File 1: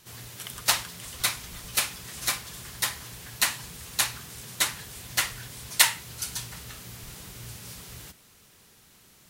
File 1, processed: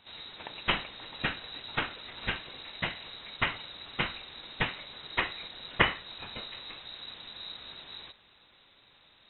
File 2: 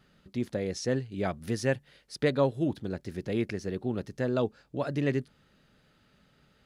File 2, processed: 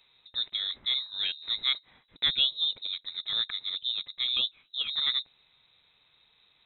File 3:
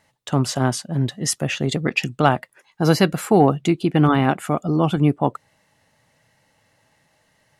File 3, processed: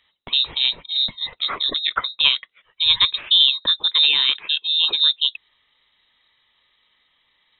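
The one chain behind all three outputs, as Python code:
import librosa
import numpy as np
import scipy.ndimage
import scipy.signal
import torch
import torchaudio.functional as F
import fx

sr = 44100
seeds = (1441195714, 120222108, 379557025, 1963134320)

y = fx.freq_invert(x, sr, carrier_hz=3900)
y = y * 10.0 ** (-1.0 / 20.0)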